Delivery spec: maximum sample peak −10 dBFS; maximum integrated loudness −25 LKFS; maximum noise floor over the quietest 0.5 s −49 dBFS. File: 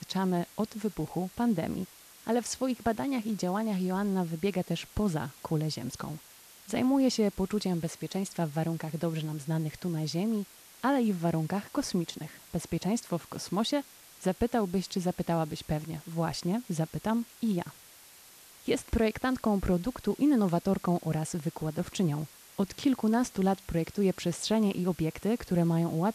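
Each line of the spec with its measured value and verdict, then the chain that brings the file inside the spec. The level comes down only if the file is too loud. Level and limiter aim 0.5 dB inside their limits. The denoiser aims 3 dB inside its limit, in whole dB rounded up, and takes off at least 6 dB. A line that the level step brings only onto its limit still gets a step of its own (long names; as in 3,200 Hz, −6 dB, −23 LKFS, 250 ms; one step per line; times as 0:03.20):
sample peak −15.5 dBFS: in spec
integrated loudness −31.0 LKFS: in spec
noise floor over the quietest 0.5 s −54 dBFS: in spec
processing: no processing needed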